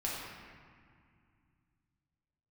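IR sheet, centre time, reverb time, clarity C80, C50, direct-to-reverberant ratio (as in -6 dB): 0.112 s, 2.1 s, 1.0 dB, -1.0 dB, -6.0 dB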